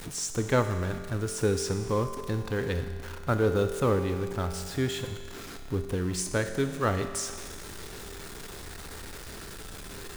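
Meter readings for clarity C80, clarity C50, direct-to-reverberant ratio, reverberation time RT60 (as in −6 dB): 9.5 dB, 8.5 dB, 6.5 dB, 2.0 s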